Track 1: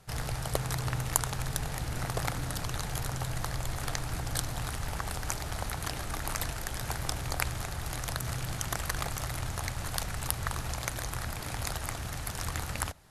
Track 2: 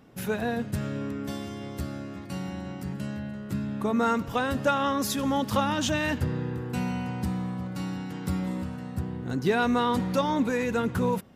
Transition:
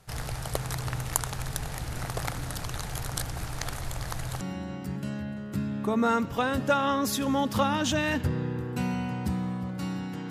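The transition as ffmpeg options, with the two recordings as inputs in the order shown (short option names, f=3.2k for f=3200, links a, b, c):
-filter_complex "[0:a]apad=whole_dur=10.3,atrim=end=10.3,asplit=2[a][b];[a]atrim=end=3.162[c];[b]atrim=start=3.158:end=4.412,asetpts=PTS-STARTPTS,areverse[d];[1:a]atrim=start=2.378:end=8.27[e];[c][d]acrossfade=d=0.004:c1=hsin:c2=hsin[f];[f][e]acrossfade=d=0.004:c1=hsin:c2=hsin"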